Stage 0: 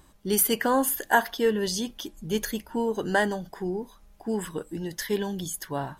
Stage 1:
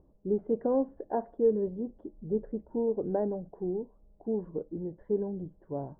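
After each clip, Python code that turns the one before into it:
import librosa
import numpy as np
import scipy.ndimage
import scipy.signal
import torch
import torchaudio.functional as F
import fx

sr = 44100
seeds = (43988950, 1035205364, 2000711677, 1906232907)

y = fx.ladder_lowpass(x, sr, hz=660.0, resonance_pct=35)
y = y * librosa.db_to_amplitude(2.5)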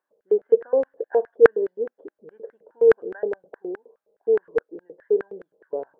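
y = fx.filter_lfo_highpass(x, sr, shape='square', hz=4.8, low_hz=460.0, high_hz=1600.0, q=7.6)
y = y * librosa.db_to_amplitude(-1.5)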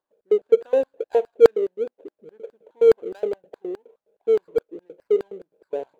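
y = scipy.signal.medfilt(x, 25)
y = y * librosa.db_to_amplitude(1.0)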